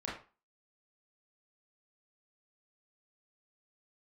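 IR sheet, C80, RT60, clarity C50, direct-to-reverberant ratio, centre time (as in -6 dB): 10.0 dB, 0.35 s, 4.5 dB, -6.0 dB, 40 ms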